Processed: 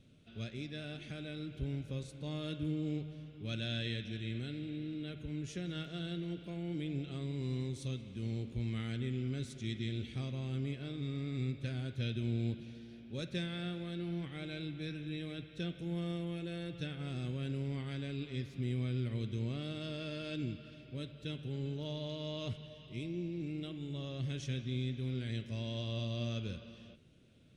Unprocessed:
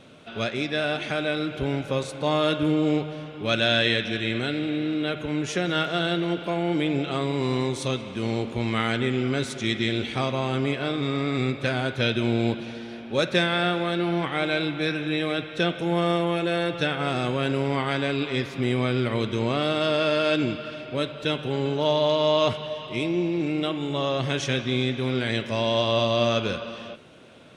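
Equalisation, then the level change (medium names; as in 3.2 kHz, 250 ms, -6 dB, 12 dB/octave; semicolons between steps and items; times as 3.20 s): amplifier tone stack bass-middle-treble 10-0-1; +5.0 dB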